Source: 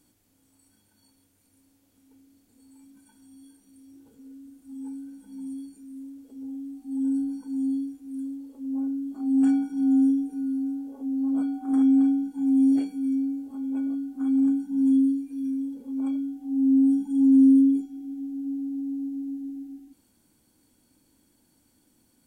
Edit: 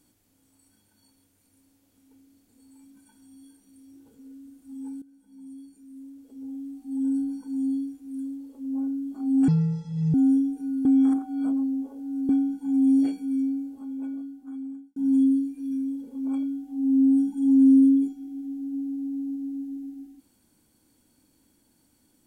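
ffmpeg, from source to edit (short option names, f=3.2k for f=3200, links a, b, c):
-filter_complex "[0:a]asplit=7[a][b][c][d][e][f][g];[a]atrim=end=5.02,asetpts=PTS-STARTPTS,afade=t=out:st=5.016:d=0.004:c=hsin:silence=0.177828[h];[b]atrim=start=5.02:end=9.484,asetpts=PTS-STARTPTS,afade=t=in:d=1.6:silence=0.177828[i];[c]atrim=start=9.48:end=9.87,asetpts=PTS-STARTPTS,asetrate=26019,aresample=44100[j];[d]atrim=start=9.866:end=10.582[k];[e]atrim=start=10.578:end=12.022,asetpts=PTS-STARTPTS,areverse[l];[f]atrim=start=12.018:end=14.69,asetpts=PTS-STARTPTS,afade=t=out:st=1.122:d=1.55[m];[g]atrim=start=14.69,asetpts=PTS-STARTPTS,afade=t=in:d=0.004:c=hsin[n];[h][i]concat=n=2:v=0:a=1[o];[o][j]acrossfade=d=0.004:c1=hsin:c2=hsin[p];[p][k]acrossfade=d=0.004:c1=hsin:c2=hsin[q];[q][l]acrossfade=d=0.004:c1=hsin:c2=hsin[r];[m][n]concat=n=2:v=0:a=1[s];[r][s]acrossfade=d=0.004:c1=hsin:c2=hsin"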